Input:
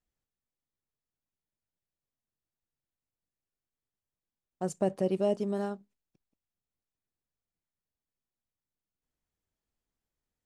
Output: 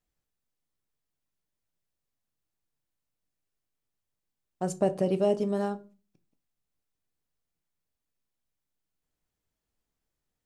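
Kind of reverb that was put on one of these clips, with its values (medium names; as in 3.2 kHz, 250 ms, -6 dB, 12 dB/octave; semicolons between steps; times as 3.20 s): simulated room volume 180 m³, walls furnished, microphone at 0.42 m; trim +3 dB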